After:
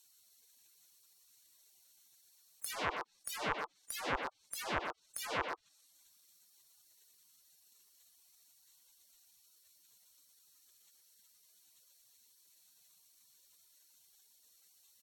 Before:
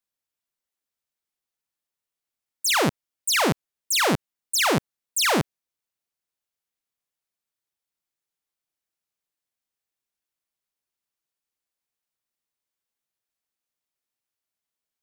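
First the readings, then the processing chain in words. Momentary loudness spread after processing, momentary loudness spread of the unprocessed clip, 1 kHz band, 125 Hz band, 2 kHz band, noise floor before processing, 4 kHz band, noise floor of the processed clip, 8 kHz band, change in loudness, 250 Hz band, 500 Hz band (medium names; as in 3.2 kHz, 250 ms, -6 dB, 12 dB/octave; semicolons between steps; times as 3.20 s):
6 LU, 8 LU, -12.5 dB, -21.5 dB, -14.5 dB, under -85 dBFS, -20.0 dB, -70 dBFS, -19.0 dB, -16.5 dB, -21.5 dB, -15.5 dB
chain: local Wiener filter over 9 samples; spectral gate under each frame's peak -20 dB weak; low-pass that closes with the level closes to 890 Hz, closed at -33.5 dBFS; in parallel at -6 dB: saturation -39.5 dBFS, distortion -10 dB; on the sum: speakerphone echo 120 ms, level -9 dB; level flattener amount 50%; trim +7.5 dB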